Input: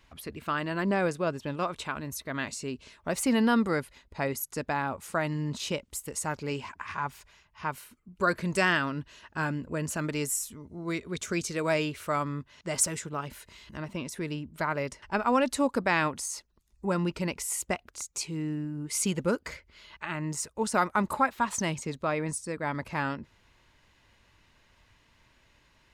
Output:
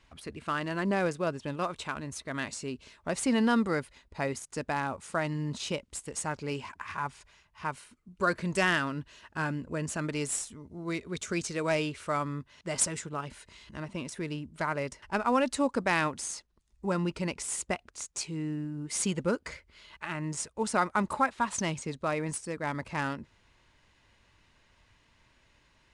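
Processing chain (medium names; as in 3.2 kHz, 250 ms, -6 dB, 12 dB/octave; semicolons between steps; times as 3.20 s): trim -1.5 dB; IMA ADPCM 88 kbps 22.05 kHz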